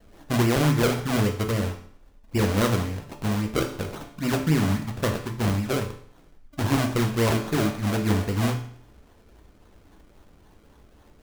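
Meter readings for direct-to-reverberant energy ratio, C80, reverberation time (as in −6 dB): 3.0 dB, 12.5 dB, 0.55 s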